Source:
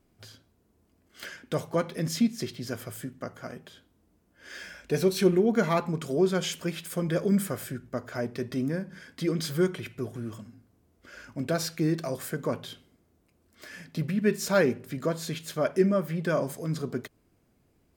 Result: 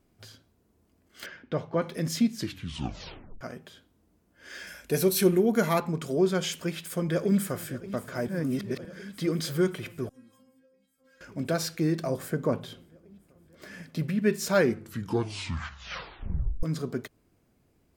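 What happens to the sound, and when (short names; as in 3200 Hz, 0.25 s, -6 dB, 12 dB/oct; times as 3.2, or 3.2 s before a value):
1.26–1.82 air absorption 230 m
2.33 tape stop 1.08 s
4.67–5.8 bell 12000 Hz +14.5 dB 0.84 oct
6.55–7.7 echo throw 0.58 s, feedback 80%, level -16 dB
8.28–8.85 reverse
10.09–11.21 metallic resonator 260 Hz, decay 0.38 s, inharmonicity 0.002
12.03–13.84 tilt shelf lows +4 dB, about 1200 Hz
14.58 tape stop 2.05 s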